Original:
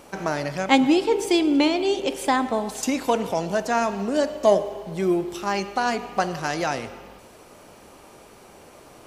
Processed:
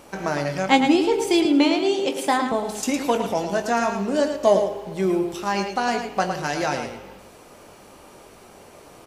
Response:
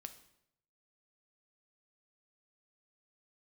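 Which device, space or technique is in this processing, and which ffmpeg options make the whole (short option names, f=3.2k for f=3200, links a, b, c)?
slapback doubling: -filter_complex "[0:a]asplit=3[a][b][c];[b]adelay=21,volume=-9dB[d];[c]adelay=110,volume=-7.5dB[e];[a][d][e]amix=inputs=3:normalize=0,asettb=1/sr,asplit=3[f][g][h];[f]atrim=end=1.454[i];[g]atrim=start=1.45:end=2.52,asetpts=PTS-STARTPTS,afade=t=in:d=0.004:c=qsin,afade=t=out:st=1.066:d=0.004:c=qsin,highpass=f=120:w=0.5412,highpass=f=120:w=1.3066[j];[h]atrim=start=2.516[k];[i][j]acrossfade=d=0.004:c1=hsin:c2=qsin[l];[l][k]acrossfade=d=0.004:c1=qsin:c2=hsin"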